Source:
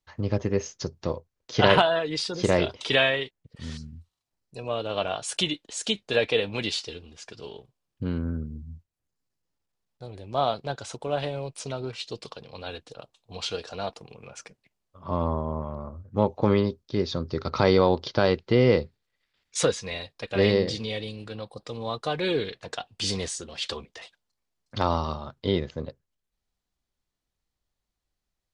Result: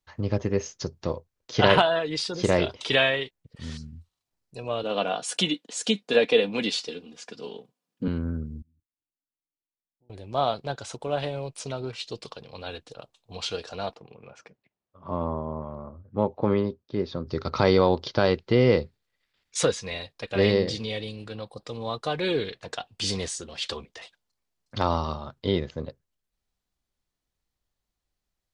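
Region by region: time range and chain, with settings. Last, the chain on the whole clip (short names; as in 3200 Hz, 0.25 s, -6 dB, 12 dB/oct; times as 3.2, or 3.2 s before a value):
4.83–8.08 HPF 160 Hz 24 dB/oct + low shelf 430 Hz +5 dB + comb 4.1 ms, depth 40%
8.62–10.1 level quantiser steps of 18 dB + vocal tract filter u
13.95–17.27 HPF 130 Hz 6 dB/oct + tape spacing loss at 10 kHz 22 dB
whole clip: dry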